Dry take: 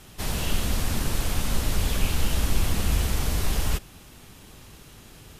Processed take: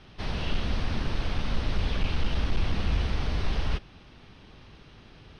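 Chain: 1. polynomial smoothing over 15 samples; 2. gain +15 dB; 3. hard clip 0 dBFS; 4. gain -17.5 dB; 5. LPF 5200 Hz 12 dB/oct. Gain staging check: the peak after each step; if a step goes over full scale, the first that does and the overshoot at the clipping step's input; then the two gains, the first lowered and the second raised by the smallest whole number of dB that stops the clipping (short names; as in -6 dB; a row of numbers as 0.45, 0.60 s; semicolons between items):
-10.5, +4.5, 0.0, -17.5, -17.5 dBFS; step 2, 4.5 dB; step 2 +10 dB, step 4 -12.5 dB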